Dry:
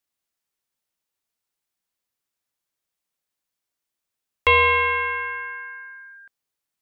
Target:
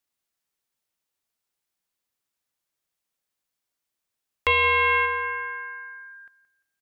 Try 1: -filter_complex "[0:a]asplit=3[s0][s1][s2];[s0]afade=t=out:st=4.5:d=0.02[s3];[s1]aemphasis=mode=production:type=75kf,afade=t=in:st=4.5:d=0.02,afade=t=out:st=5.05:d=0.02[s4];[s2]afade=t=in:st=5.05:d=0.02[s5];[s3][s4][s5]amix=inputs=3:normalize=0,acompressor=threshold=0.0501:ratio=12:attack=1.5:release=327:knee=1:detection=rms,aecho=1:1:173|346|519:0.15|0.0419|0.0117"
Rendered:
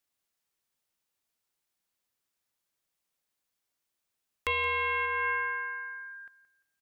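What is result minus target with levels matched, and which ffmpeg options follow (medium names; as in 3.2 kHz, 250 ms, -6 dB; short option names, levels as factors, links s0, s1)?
compression: peak gain reduction +9 dB
-filter_complex "[0:a]asplit=3[s0][s1][s2];[s0]afade=t=out:st=4.5:d=0.02[s3];[s1]aemphasis=mode=production:type=75kf,afade=t=in:st=4.5:d=0.02,afade=t=out:st=5.05:d=0.02[s4];[s2]afade=t=in:st=5.05:d=0.02[s5];[s3][s4][s5]amix=inputs=3:normalize=0,acompressor=threshold=0.158:ratio=12:attack=1.5:release=327:knee=1:detection=rms,aecho=1:1:173|346|519:0.15|0.0419|0.0117"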